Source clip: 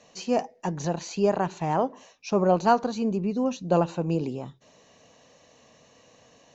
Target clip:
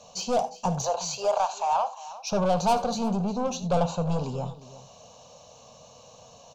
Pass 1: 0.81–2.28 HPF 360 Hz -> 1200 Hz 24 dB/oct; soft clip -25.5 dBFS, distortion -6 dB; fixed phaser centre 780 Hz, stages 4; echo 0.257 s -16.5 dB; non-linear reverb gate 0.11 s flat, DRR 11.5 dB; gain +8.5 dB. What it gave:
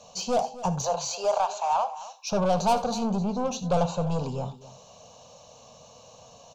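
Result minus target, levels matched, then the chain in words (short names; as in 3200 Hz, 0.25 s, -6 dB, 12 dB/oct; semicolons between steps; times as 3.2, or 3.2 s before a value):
echo 98 ms early
0.81–2.28 HPF 360 Hz -> 1200 Hz 24 dB/oct; soft clip -25.5 dBFS, distortion -6 dB; fixed phaser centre 780 Hz, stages 4; echo 0.355 s -16.5 dB; non-linear reverb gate 0.11 s flat, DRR 11.5 dB; gain +8.5 dB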